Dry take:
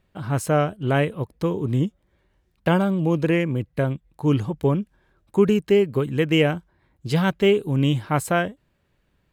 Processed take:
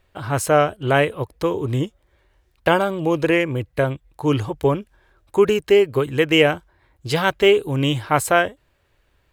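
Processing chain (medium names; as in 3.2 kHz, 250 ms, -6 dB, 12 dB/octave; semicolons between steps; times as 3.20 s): peaking EQ 190 Hz -14.5 dB 1 oct; trim +6.5 dB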